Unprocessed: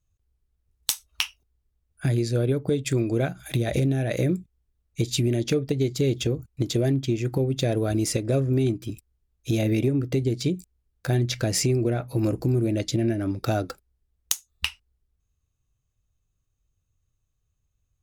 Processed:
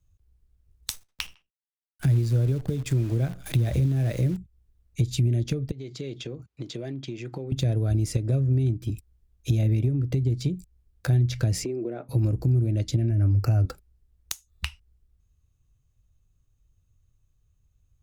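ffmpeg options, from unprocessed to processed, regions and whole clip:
ffmpeg -i in.wav -filter_complex "[0:a]asettb=1/sr,asplit=3[link_01][link_02][link_03];[link_01]atrim=end=0.934[link_04];[link_02]atrim=start=0.93:end=4.37,asetpts=PTS-STARTPTS,afade=type=in:duration=0.004:curve=qsin,afade=type=out:start_time=3.436:duration=0.004:curve=qsin,agate=range=-33dB:threshold=-54dB:ratio=3:release=100:detection=peak,acrusher=bits=7:dc=4:mix=0:aa=0.000001,asplit=2[link_05][link_06];[link_06]adelay=77,lowpass=frequency=3300:poles=1,volume=-23dB,asplit=2[link_07][link_08];[link_08]adelay=77,lowpass=frequency=3300:poles=1,volume=0.37[link_09];[link_05][link_07][link_09]amix=inputs=3:normalize=0,atrim=end_sample=151704[link_10];[link_03]atrim=start=4.366[link_11];[link_04][link_10]acrossfade=duration=0.004:curve1=hsin:curve2=qsin[link_12];[link_12][link_11]acrossfade=duration=0.004:curve1=qsin:curve2=hsin,asettb=1/sr,asplit=3[link_13][link_14][link_15];[link_13]atrim=end=5.714[link_16];[link_14]atrim=start=5.71:end=7.52,asetpts=PTS-STARTPTS,afade=type=in:duration=0.004:curve=qsin,afade=type=out:start_time=1.806:duration=0.004:curve=qsin,lowshelf=frequency=330:gain=-11,acompressor=threshold=-38dB:ratio=2.5:attack=3.2:release=140:knee=1:detection=peak,highpass=110,lowpass=5100[link_17];[link_15]atrim=start=7.516[link_18];[link_16][link_17]acrossfade=duration=0.004:curve1=hsin:curve2=qsin[link_19];[link_19][link_18]acrossfade=duration=0.004:curve1=qsin:curve2=hsin,asettb=1/sr,asplit=3[link_20][link_21][link_22];[link_20]atrim=end=11.644[link_23];[link_21]atrim=start=11.64:end=12.09,asetpts=PTS-STARTPTS,afade=type=in:duration=0.004:curve=qsin,afade=type=out:start_time=0.446:duration=0.004:curve=qsin,highpass=frequency=320:width=0.5412,highpass=frequency=320:width=1.3066,aemphasis=mode=reproduction:type=riaa[link_24];[link_22]atrim=start=12.086[link_25];[link_23][link_24]acrossfade=duration=0.004:curve1=hsin:curve2=qsin[link_26];[link_26][link_25]acrossfade=duration=0.004:curve1=qsin:curve2=hsin,asettb=1/sr,asplit=3[link_27][link_28][link_29];[link_27]atrim=end=13.104[link_30];[link_28]atrim=start=13.1:end=13.65,asetpts=PTS-STARTPTS,afade=type=in:duration=0.004:curve=qsin,afade=type=out:start_time=0.546:duration=0.004:curve=qsin,asuperstop=centerf=3500:order=12:qfactor=2.9,equalizer=frequency=100:width_type=o:width=0.34:gain=9.5,acompressor=threshold=-24dB:ratio=2:attack=3.2:release=140:knee=1:detection=peak[link_31];[link_29]atrim=start=13.646[link_32];[link_30][link_31]acrossfade=duration=0.004:curve1=hsin:curve2=qsin[link_33];[link_33][link_32]acrossfade=duration=0.004:curve1=qsin:curve2=hsin,lowshelf=frequency=230:gain=8,acrossover=split=120[link_34][link_35];[link_35]acompressor=threshold=-31dB:ratio=6[link_36];[link_34][link_36]amix=inputs=2:normalize=0,volume=1.5dB" out.wav

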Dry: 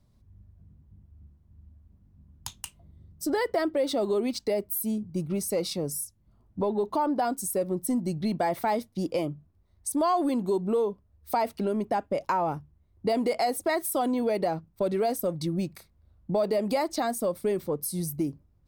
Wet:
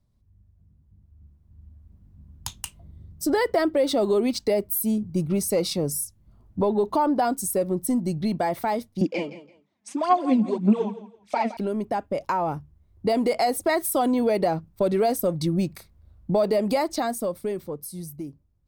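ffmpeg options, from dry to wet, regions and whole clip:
ffmpeg -i in.wav -filter_complex "[0:a]asettb=1/sr,asplit=3[link_01][link_02][link_03];[link_01]atrim=end=9.014[link_04];[link_02]atrim=start=9.01:end=11.57,asetpts=PTS-STARTPTS,afade=type=in:duration=0.004:curve=qsin,afade=type=out:start_time=2.556:duration=0.004:curve=qsin,aphaser=in_gain=1:out_gain=1:delay=4.7:decay=0.72:speed=1.8:type=sinusoidal,highpass=frequency=190:width=0.5412,highpass=frequency=190:width=1.3066,equalizer=frequency=210:width_type=q:width=4:gain=5,equalizer=frequency=430:width_type=q:width=4:gain=-6,equalizer=frequency=1200:width_type=q:width=4:gain=-4,equalizer=frequency=2400:width_type=q:width=4:gain=7,equalizer=frequency=4400:width_type=q:width=4:gain=-6,lowpass=frequency=6600:width=0.5412,lowpass=frequency=6600:width=1.3066,aecho=1:1:167|334:0.178|0.0409,atrim=end_sample=112896[link_05];[link_03]atrim=start=11.566[link_06];[link_04][link_05]acrossfade=duration=0.004:curve1=hsin:curve2=qsin[link_07];[link_07][link_06]acrossfade=duration=0.004:curve1=qsin:curve2=hsin,dynaudnorm=framelen=100:gausssize=31:maxgain=12.5dB,lowshelf=frequency=110:gain=4.5,volume=-7.5dB" out.wav

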